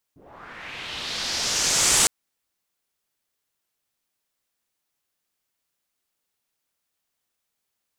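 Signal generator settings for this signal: swept filtered noise white, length 1.91 s lowpass, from 210 Hz, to 8100 Hz, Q 2.3, linear, gain ramp +22 dB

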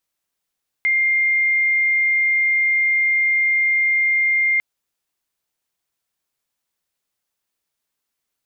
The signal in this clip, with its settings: tone sine 2110 Hz -14.5 dBFS 3.75 s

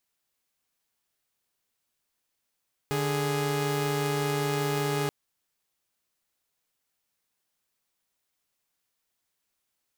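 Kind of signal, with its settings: chord D3/G#4 saw, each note -26 dBFS 2.18 s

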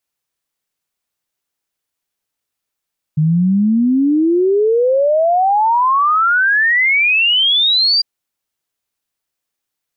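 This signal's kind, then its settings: log sweep 150 Hz -> 4800 Hz 4.85 s -10 dBFS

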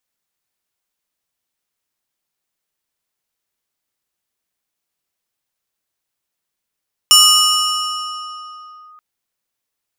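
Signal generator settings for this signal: FM tone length 1.88 s, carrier 1240 Hz, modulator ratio 3.36, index 2, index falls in 1.82 s linear, decay 3.03 s, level -4 dB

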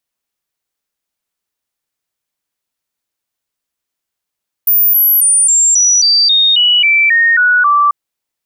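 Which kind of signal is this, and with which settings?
stepped sine 14800 Hz down, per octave 3, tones 12, 0.27 s, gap 0.00 s -6.5 dBFS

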